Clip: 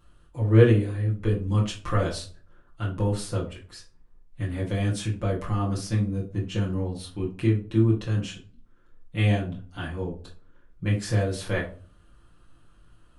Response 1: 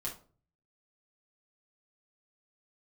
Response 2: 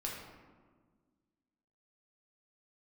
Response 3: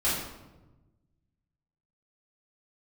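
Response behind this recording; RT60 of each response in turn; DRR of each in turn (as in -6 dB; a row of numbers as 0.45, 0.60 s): 1; 0.40, 1.6, 1.1 s; -5.0, -3.5, -11.0 dB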